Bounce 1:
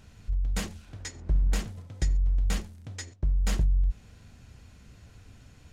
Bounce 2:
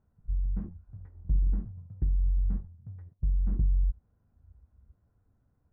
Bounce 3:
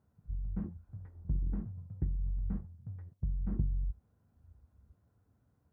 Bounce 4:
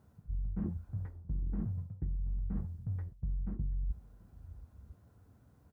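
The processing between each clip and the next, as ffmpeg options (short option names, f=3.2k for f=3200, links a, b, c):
-af "lowpass=f=1.3k:w=0.5412,lowpass=f=1.3k:w=1.3066,afwtdn=0.0355,volume=-1.5dB"
-af "highpass=77,volume=1dB"
-af "areverse,acompressor=threshold=-41dB:ratio=12,areverse,aecho=1:1:732:0.075,volume=9dB"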